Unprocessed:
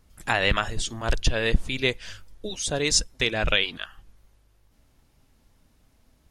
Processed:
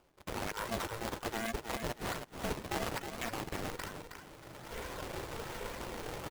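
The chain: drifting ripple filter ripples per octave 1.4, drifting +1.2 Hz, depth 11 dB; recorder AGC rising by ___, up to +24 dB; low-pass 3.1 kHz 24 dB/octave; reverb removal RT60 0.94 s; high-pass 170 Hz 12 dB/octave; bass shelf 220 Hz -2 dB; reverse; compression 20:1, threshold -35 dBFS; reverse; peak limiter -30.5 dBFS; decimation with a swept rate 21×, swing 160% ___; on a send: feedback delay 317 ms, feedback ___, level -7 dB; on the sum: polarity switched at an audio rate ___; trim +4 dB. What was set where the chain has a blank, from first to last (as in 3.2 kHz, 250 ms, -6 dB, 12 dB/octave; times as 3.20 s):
22 dB/s, 1.2 Hz, 31%, 230 Hz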